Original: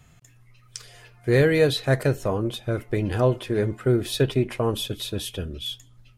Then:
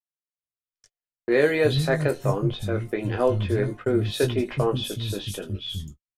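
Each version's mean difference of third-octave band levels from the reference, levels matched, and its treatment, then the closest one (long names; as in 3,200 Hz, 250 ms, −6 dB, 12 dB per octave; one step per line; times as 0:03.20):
6.0 dB: high-shelf EQ 8,200 Hz −4.5 dB
double-tracking delay 20 ms −6.5 dB
three-band delay without the direct sound mids, highs, lows 80/370 ms, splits 210/4,600 Hz
noise gate −37 dBFS, range −56 dB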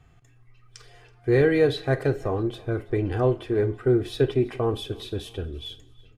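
4.0 dB: low-pass filter 1,900 Hz 6 dB per octave
comb filter 2.6 ms, depth 47%
repeating echo 328 ms, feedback 50%, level −24 dB
four-comb reverb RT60 0.32 s, combs from 28 ms, DRR 14 dB
level −1.5 dB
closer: second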